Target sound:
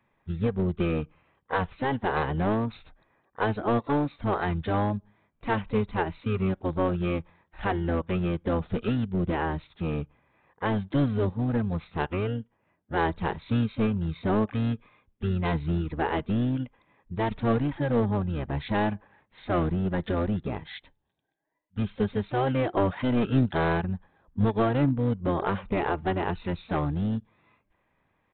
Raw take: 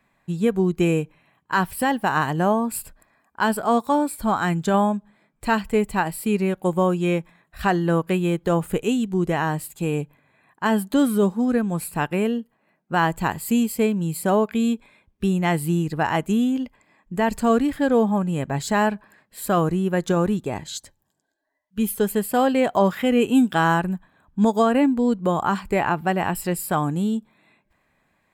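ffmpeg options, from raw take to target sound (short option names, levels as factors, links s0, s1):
-filter_complex "[0:a]asplit=3[s0][s1][s2];[s1]asetrate=22050,aresample=44100,atempo=2,volume=0.891[s3];[s2]asetrate=52444,aresample=44100,atempo=0.840896,volume=0.141[s4];[s0][s3][s4]amix=inputs=3:normalize=0,aresample=8000,aeval=exprs='clip(val(0),-1,0.178)':c=same,aresample=44100,volume=0.447"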